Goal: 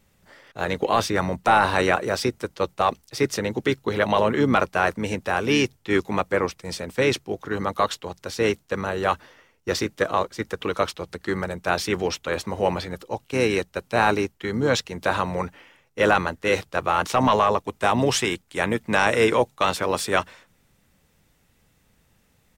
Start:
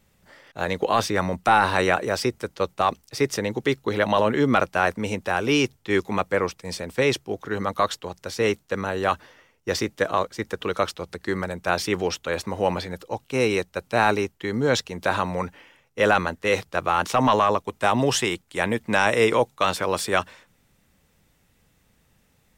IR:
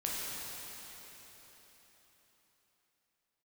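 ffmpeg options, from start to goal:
-filter_complex "[0:a]asplit=2[link_01][link_02];[link_02]asetrate=33038,aresample=44100,atempo=1.33484,volume=-12dB[link_03];[link_01][link_03]amix=inputs=2:normalize=0"

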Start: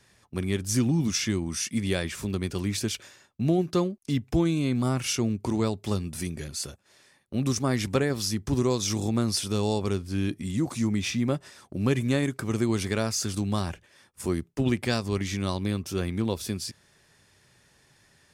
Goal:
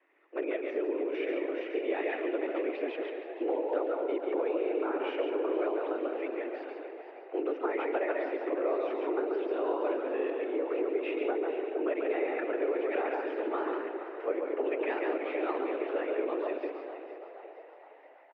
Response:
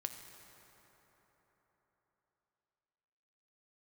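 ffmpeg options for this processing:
-filter_complex "[0:a]asplit=2[link_01][link_02];[1:a]atrim=start_sample=2205,asetrate=83790,aresample=44100,adelay=140[link_03];[link_02][link_03]afir=irnorm=-1:irlink=0,volume=3.5dB[link_04];[link_01][link_04]amix=inputs=2:normalize=0,dynaudnorm=framelen=100:gausssize=5:maxgain=5.5dB,afftfilt=real='hypot(re,im)*cos(2*PI*random(0))':imag='hypot(re,im)*sin(2*PI*random(1))':win_size=512:overlap=0.75,acompressor=threshold=-25dB:ratio=16,asplit=6[link_05][link_06][link_07][link_08][link_09][link_10];[link_06]adelay=468,afreqshift=80,volume=-12.5dB[link_11];[link_07]adelay=936,afreqshift=160,volume=-18.3dB[link_12];[link_08]adelay=1404,afreqshift=240,volume=-24.2dB[link_13];[link_09]adelay=1872,afreqshift=320,volume=-30dB[link_14];[link_10]adelay=2340,afreqshift=400,volume=-35.9dB[link_15];[link_05][link_11][link_12][link_13][link_14][link_15]amix=inputs=6:normalize=0,highpass=frequency=170:width_type=q:width=0.5412,highpass=frequency=170:width_type=q:width=1.307,lowpass=frequency=2400:width_type=q:width=0.5176,lowpass=frequency=2400:width_type=q:width=0.7071,lowpass=frequency=2400:width_type=q:width=1.932,afreqshift=150"

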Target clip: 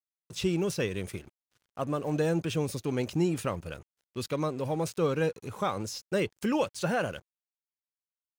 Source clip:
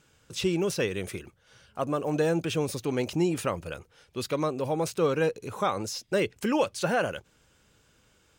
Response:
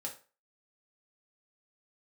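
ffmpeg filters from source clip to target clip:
-af "bass=frequency=250:gain=5,treble=frequency=4000:gain=1,aeval=exprs='sgn(val(0))*max(abs(val(0))-0.00355,0)':channel_layout=same,volume=-3dB"

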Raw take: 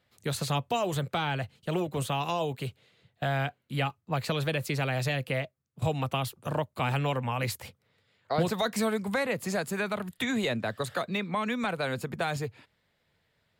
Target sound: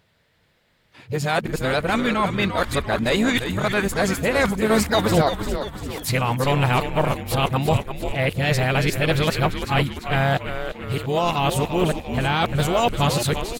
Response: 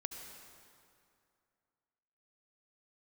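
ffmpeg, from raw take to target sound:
-filter_complex "[0:a]areverse,asplit=3[link_01][link_02][link_03];[link_02]asetrate=35002,aresample=44100,atempo=1.25992,volume=-16dB[link_04];[link_03]asetrate=55563,aresample=44100,atempo=0.793701,volume=-14dB[link_05];[link_01][link_04][link_05]amix=inputs=3:normalize=0,asplit=7[link_06][link_07][link_08][link_09][link_10][link_11][link_12];[link_07]adelay=345,afreqshift=-120,volume=-8dB[link_13];[link_08]adelay=690,afreqshift=-240,volume=-13.4dB[link_14];[link_09]adelay=1035,afreqshift=-360,volume=-18.7dB[link_15];[link_10]adelay=1380,afreqshift=-480,volume=-24.1dB[link_16];[link_11]adelay=1725,afreqshift=-600,volume=-29.4dB[link_17];[link_12]adelay=2070,afreqshift=-720,volume=-34.8dB[link_18];[link_06][link_13][link_14][link_15][link_16][link_17][link_18]amix=inputs=7:normalize=0,volume=8.5dB"

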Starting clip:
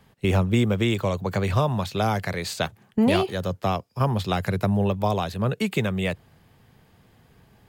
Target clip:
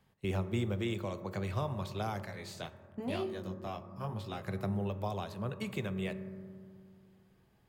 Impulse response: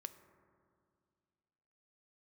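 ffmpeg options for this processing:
-filter_complex "[1:a]atrim=start_sample=2205[link_01];[0:a][link_01]afir=irnorm=-1:irlink=0,asettb=1/sr,asplit=3[link_02][link_03][link_04];[link_02]atrim=end=2.264[link_05];[link_03]atrim=start=2.26:end=4.48,asetpts=PTS-STARTPTS,afade=type=in:duration=0.004:curve=qsin,afade=type=out:start_time=2.216:duration=0.004:curve=qsin,flanger=delay=18:depth=6.2:speed=1[link_06];[link_04]atrim=start=4.476[link_07];[link_05][link_06]acrossfade=duration=0.004:curve1=hsin:curve2=qsin[link_08];[link_08][link_07]acrossfade=duration=0.004:curve1=qsin:curve2=hsin,volume=-8.5dB"

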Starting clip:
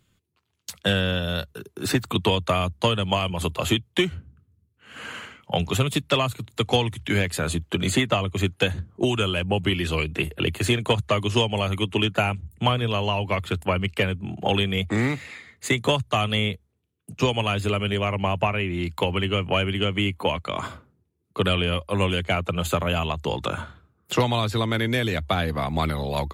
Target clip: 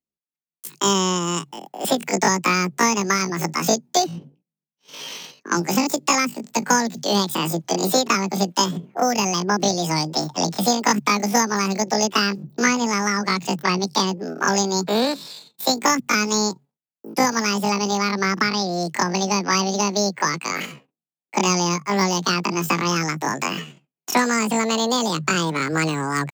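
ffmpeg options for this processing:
ffmpeg -i in.wav -af "agate=range=-33dB:threshold=-42dB:ratio=3:detection=peak,asetrate=88200,aresample=44100,atempo=0.5,volume=3dB" out.wav

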